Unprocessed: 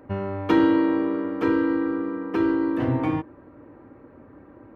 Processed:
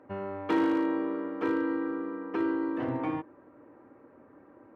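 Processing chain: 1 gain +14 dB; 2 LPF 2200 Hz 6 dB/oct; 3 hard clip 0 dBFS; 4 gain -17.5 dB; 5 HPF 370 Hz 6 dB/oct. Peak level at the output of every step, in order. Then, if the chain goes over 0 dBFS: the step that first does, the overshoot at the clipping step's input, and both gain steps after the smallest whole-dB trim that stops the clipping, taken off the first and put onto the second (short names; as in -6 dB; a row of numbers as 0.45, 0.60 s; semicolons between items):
+5.5, +5.0, 0.0, -17.5, -15.5 dBFS; step 1, 5.0 dB; step 1 +9 dB, step 4 -12.5 dB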